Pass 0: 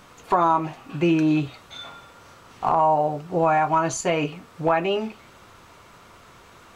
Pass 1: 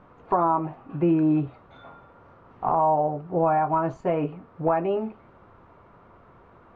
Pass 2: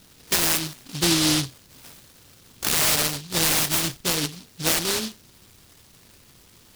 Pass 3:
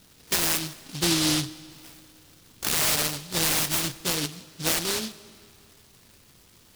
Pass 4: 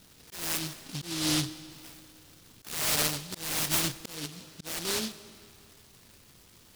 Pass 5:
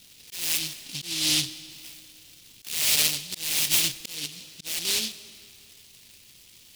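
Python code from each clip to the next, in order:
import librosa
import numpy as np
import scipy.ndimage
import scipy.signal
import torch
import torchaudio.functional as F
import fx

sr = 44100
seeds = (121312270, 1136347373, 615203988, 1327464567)

y1 = scipy.signal.sosfilt(scipy.signal.butter(2, 1100.0, 'lowpass', fs=sr, output='sos'), x)
y1 = y1 * 10.0 ** (-1.0 / 20.0)
y2 = fx.noise_mod_delay(y1, sr, seeds[0], noise_hz=4100.0, depth_ms=0.48)
y3 = fx.rev_freeverb(y2, sr, rt60_s=2.5, hf_ratio=0.9, predelay_ms=65, drr_db=19.0)
y3 = y3 * 10.0 ** (-3.0 / 20.0)
y4 = fx.auto_swell(y3, sr, attack_ms=396.0)
y4 = y4 * 10.0 ** (-1.0 / 20.0)
y5 = fx.high_shelf_res(y4, sr, hz=1900.0, db=10.0, q=1.5)
y5 = y5 * 10.0 ** (-4.5 / 20.0)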